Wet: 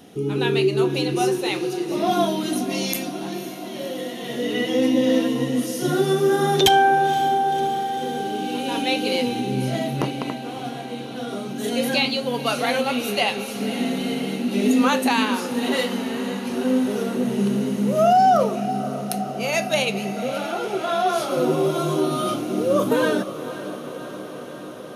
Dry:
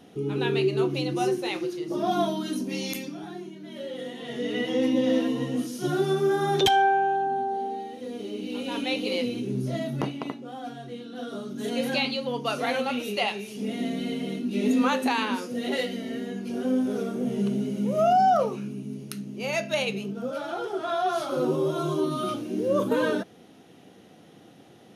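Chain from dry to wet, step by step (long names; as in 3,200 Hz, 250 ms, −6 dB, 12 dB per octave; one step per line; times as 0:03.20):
high-shelf EQ 7,000 Hz +8.5 dB
on a send: feedback delay with all-pass diffusion 530 ms, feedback 75%, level −13 dB
on the sum: level +4.5 dB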